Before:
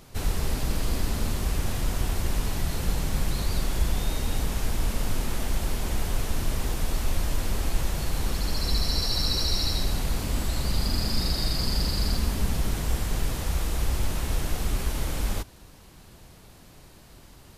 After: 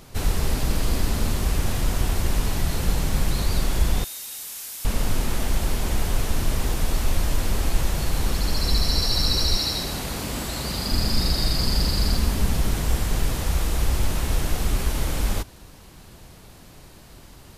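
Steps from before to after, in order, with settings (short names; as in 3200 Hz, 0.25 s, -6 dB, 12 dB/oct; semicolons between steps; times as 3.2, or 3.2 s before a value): 4.04–4.85 differentiator; 9.57–10.92 HPF 160 Hz 6 dB/oct; gain +4 dB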